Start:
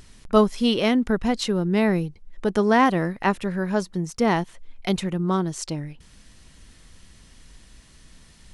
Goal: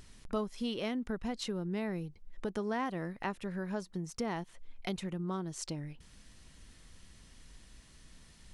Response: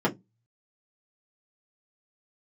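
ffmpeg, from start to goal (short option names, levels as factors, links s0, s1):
-af "acompressor=threshold=0.0316:ratio=2.5,volume=0.473"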